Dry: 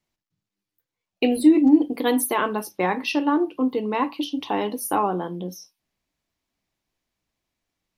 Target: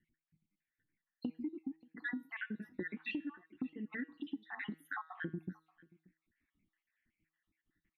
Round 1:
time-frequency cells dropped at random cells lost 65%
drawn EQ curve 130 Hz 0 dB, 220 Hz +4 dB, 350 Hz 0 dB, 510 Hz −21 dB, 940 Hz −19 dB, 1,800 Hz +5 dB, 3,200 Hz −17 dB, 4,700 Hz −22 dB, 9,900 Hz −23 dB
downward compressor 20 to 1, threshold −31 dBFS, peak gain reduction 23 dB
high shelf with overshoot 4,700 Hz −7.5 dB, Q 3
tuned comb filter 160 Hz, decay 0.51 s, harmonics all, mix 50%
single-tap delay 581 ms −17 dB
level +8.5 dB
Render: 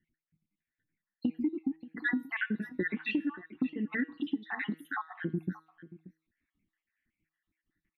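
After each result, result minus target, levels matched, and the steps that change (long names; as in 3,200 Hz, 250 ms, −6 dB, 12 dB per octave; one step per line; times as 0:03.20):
downward compressor: peak gain reduction −9.5 dB; echo-to-direct +7 dB
change: downward compressor 20 to 1, threshold −41 dBFS, peak gain reduction 32.5 dB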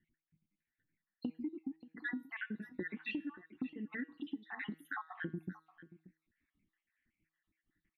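echo-to-direct +7 dB
change: single-tap delay 581 ms −24 dB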